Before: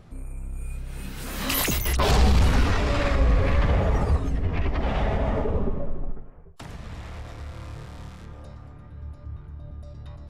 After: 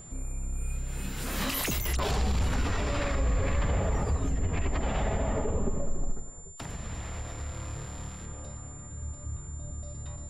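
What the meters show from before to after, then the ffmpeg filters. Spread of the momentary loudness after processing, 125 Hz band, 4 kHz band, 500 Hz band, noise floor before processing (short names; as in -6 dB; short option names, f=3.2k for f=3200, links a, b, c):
12 LU, -6.0 dB, -6.0 dB, -5.5 dB, -45 dBFS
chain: -af "alimiter=limit=-20.5dB:level=0:latency=1:release=111,aeval=exprs='val(0)+0.00447*sin(2*PI*7200*n/s)':c=same"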